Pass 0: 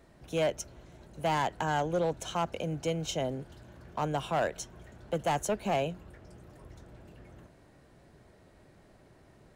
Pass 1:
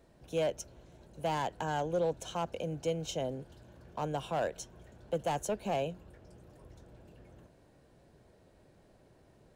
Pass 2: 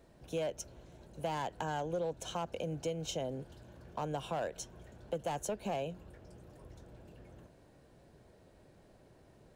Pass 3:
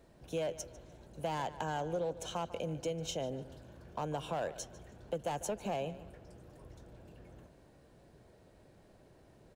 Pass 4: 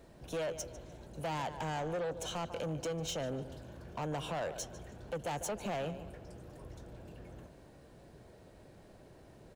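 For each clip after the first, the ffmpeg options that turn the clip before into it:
-af "equalizer=f=500:t=o:w=0.33:g=4,equalizer=f=1.25k:t=o:w=0.33:g=-4,equalizer=f=2k:t=o:w=0.33:g=-5,volume=-4dB"
-af "acompressor=threshold=-35dB:ratio=3,volume=1dB"
-filter_complex "[0:a]asplit=2[a][b];[b]adelay=148,lowpass=f=4.6k:p=1,volume=-15dB,asplit=2[c][d];[d]adelay=148,lowpass=f=4.6k:p=1,volume=0.4,asplit=2[e][f];[f]adelay=148,lowpass=f=4.6k:p=1,volume=0.4,asplit=2[g][h];[h]adelay=148,lowpass=f=4.6k:p=1,volume=0.4[i];[a][c][e][g][i]amix=inputs=5:normalize=0"
-af "asoftclip=type=tanh:threshold=-37dB,volume=4.5dB"

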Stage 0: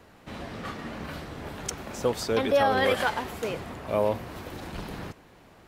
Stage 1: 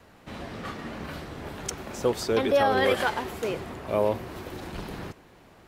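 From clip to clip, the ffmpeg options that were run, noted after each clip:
-af "adynamicequalizer=threshold=0.00447:dfrequency=370:dqfactor=5.3:tfrequency=370:tqfactor=5.3:attack=5:release=100:ratio=0.375:range=3.5:mode=boostabove:tftype=bell"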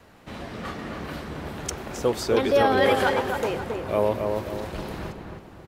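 -filter_complex "[0:a]asplit=2[a][b];[b]adelay=270,lowpass=f=1.8k:p=1,volume=-4dB,asplit=2[c][d];[d]adelay=270,lowpass=f=1.8k:p=1,volume=0.45,asplit=2[e][f];[f]adelay=270,lowpass=f=1.8k:p=1,volume=0.45,asplit=2[g][h];[h]adelay=270,lowpass=f=1.8k:p=1,volume=0.45,asplit=2[i][j];[j]adelay=270,lowpass=f=1.8k:p=1,volume=0.45,asplit=2[k][l];[l]adelay=270,lowpass=f=1.8k:p=1,volume=0.45[m];[a][c][e][g][i][k][m]amix=inputs=7:normalize=0,volume=1.5dB"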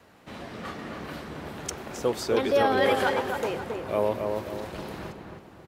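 -af "highpass=f=110:p=1,volume=-2.5dB"

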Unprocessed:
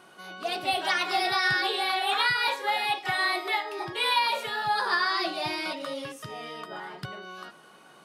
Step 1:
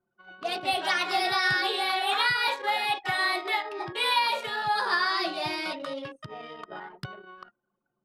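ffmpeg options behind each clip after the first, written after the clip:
-af "anlmdn=1.58"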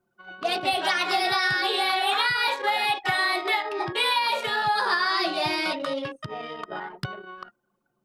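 -af "acompressor=threshold=-26dB:ratio=6,volume=6dB"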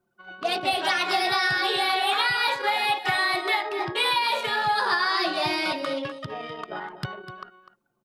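-af "aecho=1:1:250:0.224"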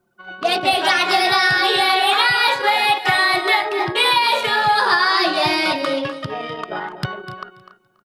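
-af "aecho=1:1:282|564:0.126|0.0277,volume=7.5dB"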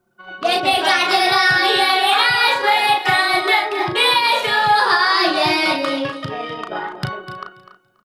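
-filter_complex "[0:a]asplit=2[a][b];[b]adelay=36,volume=-6dB[c];[a][c]amix=inputs=2:normalize=0"

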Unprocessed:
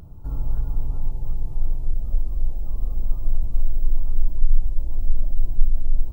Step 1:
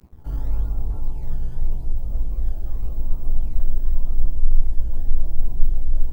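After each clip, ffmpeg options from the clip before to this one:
-filter_complex "[0:a]acrossover=split=100|150|210[a][b][c][d];[b]acrusher=samples=16:mix=1:aa=0.000001:lfo=1:lforange=25.6:lforate=0.87[e];[a][e][c][d]amix=inputs=4:normalize=0,aeval=exprs='sgn(val(0))*max(abs(val(0))-0.01,0)':c=same,flanger=delay=15.5:depth=3.6:speed=0.64,volume=5dB"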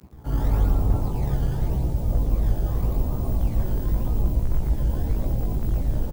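-filter_complex "[0:a]highpass=72,dynaudnorm=f=210:g=3:m=7dB,asplit=5[a][b][c][d][e];[b]adelay=113,afreqshift=-77,volume=-5.5dB[f];[c]adelay=226,afreqshift=-154,volume=-14.4dB[g];[d]adelay=339,afreqshift=-231,volume=-23.2dB[h];[e]adelay=452,afreqshift=-308,volume=-32.1dB[i];[a][f][g][h][i]amix=inputs=5:normalize=0,volume=4.5dB"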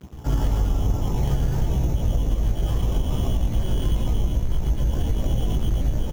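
-af "acompressor=threshold=-23dB:ratio=6,acrusher=samples=7:mix=1:aa=0.000001,volume=6dB"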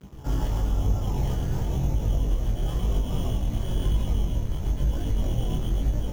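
-af "flanger=delay=20:depth=7.2:speed=1"

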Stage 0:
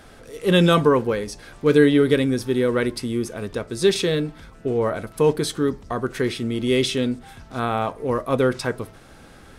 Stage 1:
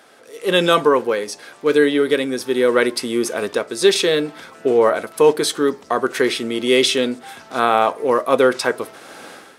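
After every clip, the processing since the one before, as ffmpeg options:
-af "dynaudnorm=f=150:g=5:m=15.5dB,highpass=370"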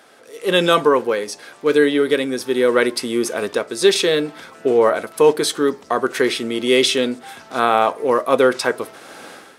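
-af anull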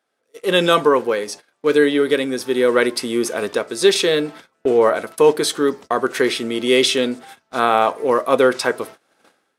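-af "agate=range=-25dB:threshold=-34dB:ratio=16:detection=peak"

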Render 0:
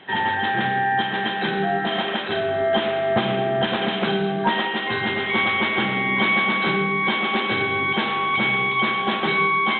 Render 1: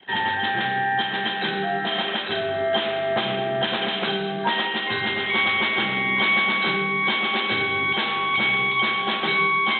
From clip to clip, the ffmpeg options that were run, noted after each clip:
-filter_complex "[0:a]aemphasis=mode=production:type=75kf,anlmdn=0.158,acrossover=split=340|920[a][b][c];[a]alimiter=limit=-23dB:level=0:latency=1:release=200[d];[d][b][c]amix=inputs=3:normalize=0,volume=-3dB"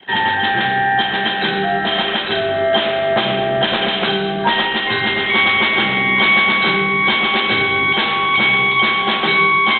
-filter_complex "[0:a]asplit=6[a][b][c][d][e][f];[b]adelay=126,afreqshift=-57,volume=-19dB[g];[c]adelay=252,afreqshift=-114,volume=-23.3dB[h];[d]adelay=378,afreqshift=-171,volume=-27.6dB[i];[e]adelay=504,afreqshift=-228,volume=-31.9dB[j];[f]adelay=630,afreqshift=-285,volume=-36.2dB[k];[a][g][h][i][j][k]amix=inputs=6:normalize=0,volume=7dB"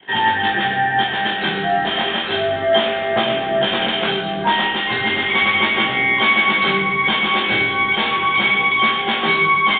-filter_complex "[0:a]asplit=2[a][b];[b]adelay=44,volume=-12dB[c];[a][c]amix=inputs=2:normalize=0,flanger=delay=17.5:depth=7.1:speed=0.33,aresample=8000,aresample=44100,volume=1dB"

